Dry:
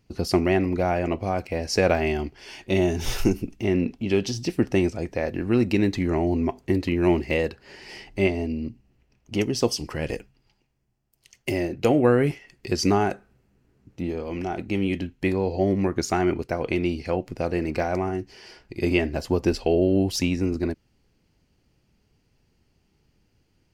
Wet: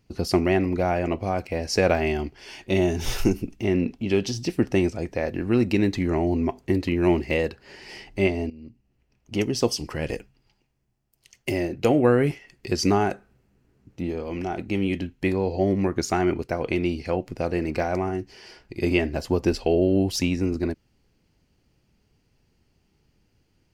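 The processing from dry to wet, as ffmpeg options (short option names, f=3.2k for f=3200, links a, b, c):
-filter_complex "[0:a]asplit=2[a][b];[a]atrim=end=8.5,asetpts=PTS-STARTPTS,afade=t=out:st=8.496:d=0.004:c=hsin:silence=0.125893[c];[b]atrim=start=8.5,asetpts=PTS-STARTPTS,afade=t=in:d=0.95:silence=0.125893[d];[c][d]concat=n=2:v=0:a=1"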